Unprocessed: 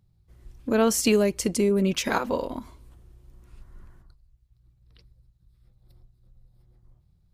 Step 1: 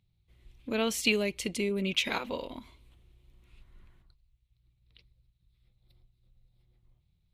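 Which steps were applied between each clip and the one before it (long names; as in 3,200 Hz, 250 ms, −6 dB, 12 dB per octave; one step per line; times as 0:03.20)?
flat-topped bell 2,900 Hz +12 dB 1.2 octaves
level −9 dB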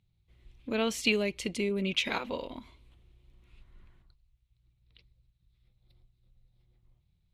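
high-shelf EQ 10,000 Hz −11.5 dB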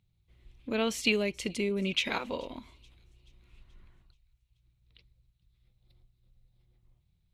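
delay with a high-pass on its return 430 ms, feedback 51%, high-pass 4,100 Hz, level −22 dB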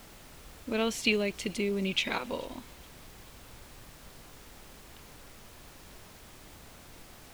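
background noise pink −51 dBFS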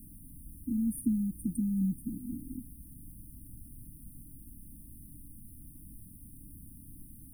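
linear-phase brick-wall band-stop 320–8,800 Hz
level +4 dB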